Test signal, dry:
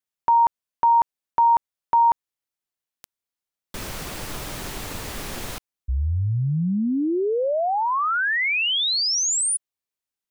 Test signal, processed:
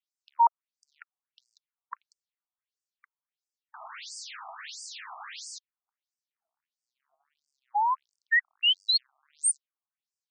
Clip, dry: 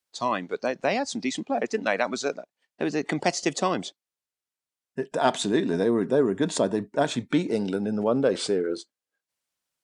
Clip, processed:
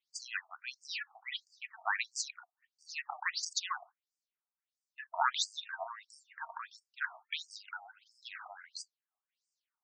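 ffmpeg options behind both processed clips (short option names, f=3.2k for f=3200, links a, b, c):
-af "aphaser=in_gain=1:out_gain=1:delay=4.5:decay=0.25:speed=0.24:type=sinusoidal,afftfilt=real='re*between(b*sr/1024,900*pow(6600/900,0.5+0.5*sin(2*PI*1.5*pts/sr))/1.41,900*pow(6600/900,0.5+0.5*sin(2*PI*1.5*pts/sr))*1.41)':imag='im*between(b*sr/1024,900*pow(6600/900,0.5+0.5*sin(2*PI*1.5*pts/sr))/1.41,900*pow(6600/900,0.5+0.5*sin(2*PI*1.5*pts/sr))*1.41)':win_size=1024:overlap=0.75"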